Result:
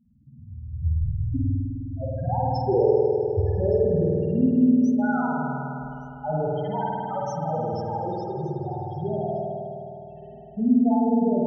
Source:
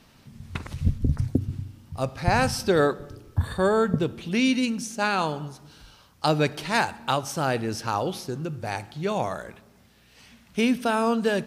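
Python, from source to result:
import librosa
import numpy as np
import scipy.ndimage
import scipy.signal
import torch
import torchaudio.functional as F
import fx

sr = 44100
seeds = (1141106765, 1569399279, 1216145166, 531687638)

y = fx.spec_topn(x, sr, count=2)
y = y + 10.0 ** (-22.0 / 20.0) * np.pad(y, (int(1167 * sr / 1000.0), 0))[:len(y)]
y = fx.rev_spring(y, sr, rt60_s=3.1, pass_ms=(51,), chirp_ms=60, drr_db=-5.5)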